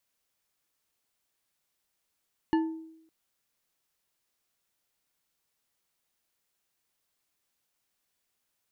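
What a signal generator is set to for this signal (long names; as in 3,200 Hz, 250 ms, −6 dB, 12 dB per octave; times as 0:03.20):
struck glass bar, length 0.56 s, lowest mode 322 Hz, decay 0.79 s, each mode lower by 7 dB, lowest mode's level −20 dB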